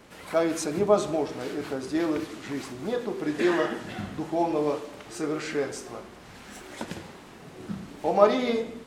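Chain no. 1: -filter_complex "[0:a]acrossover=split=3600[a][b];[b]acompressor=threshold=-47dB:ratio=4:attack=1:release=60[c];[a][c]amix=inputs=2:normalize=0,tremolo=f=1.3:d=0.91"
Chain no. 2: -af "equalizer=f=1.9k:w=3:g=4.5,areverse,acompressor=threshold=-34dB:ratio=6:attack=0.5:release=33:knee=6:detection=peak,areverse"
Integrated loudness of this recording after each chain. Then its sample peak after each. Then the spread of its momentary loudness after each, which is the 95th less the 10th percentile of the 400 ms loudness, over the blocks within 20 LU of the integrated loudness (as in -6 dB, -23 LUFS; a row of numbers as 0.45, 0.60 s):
-32.5, -39.0 LUFS; -11.0, -27.5 dBFS; 20, 6 LU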